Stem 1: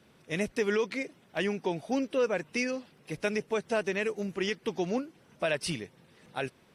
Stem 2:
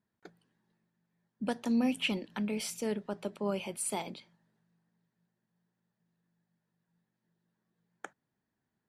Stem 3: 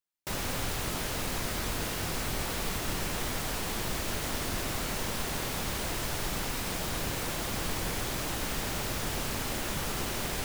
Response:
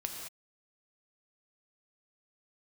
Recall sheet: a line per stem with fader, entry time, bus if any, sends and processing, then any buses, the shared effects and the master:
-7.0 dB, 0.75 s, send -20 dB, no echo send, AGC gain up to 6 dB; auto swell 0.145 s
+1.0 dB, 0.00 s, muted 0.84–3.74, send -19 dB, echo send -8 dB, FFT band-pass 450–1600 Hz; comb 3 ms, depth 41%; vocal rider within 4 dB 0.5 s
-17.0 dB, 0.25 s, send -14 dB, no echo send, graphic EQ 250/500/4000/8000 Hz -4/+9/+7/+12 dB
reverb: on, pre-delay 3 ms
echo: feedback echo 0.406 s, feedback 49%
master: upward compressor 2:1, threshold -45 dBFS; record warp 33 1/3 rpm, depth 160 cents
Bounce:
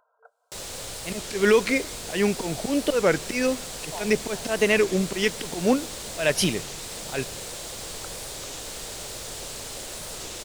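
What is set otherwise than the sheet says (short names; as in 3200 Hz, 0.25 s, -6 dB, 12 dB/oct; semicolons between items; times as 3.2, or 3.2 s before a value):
stem 1 -7.0 dB -> +4.0 dB; stem 3 -17.0 dB -> -10.0 dB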